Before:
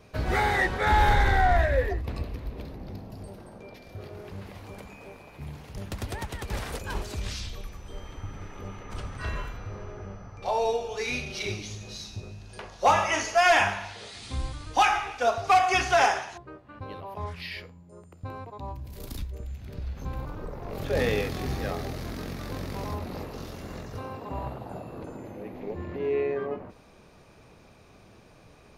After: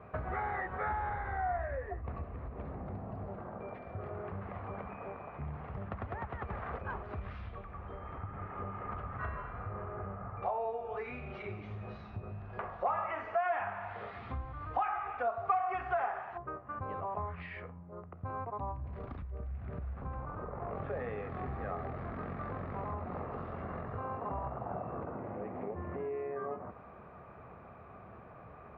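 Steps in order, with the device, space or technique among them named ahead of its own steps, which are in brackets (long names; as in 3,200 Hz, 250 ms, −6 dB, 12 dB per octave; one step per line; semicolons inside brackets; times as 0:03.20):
bass amplifier (downward compressor 5 to 1, threshold −38 dBFS, peak gain reduction 19 dB; loudspeaker in its box 63–2,000 Hz, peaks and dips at 70 Hz +4 dB, 300 Hz −5 dB, 710 Hz +6 dB, 1,200 Hz +9 dB)
level +1 dB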